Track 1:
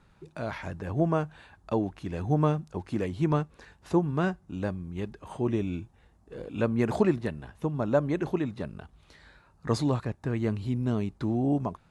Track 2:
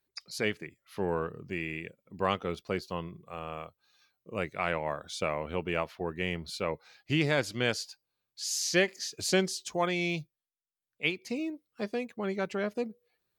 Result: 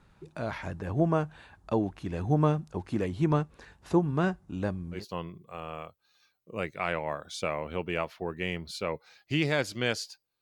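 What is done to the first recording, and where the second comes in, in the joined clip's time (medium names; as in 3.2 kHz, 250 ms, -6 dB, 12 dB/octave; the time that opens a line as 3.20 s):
track 1
4.98 s: go over to track 2 from 2.77 s, crossfade 0.14 s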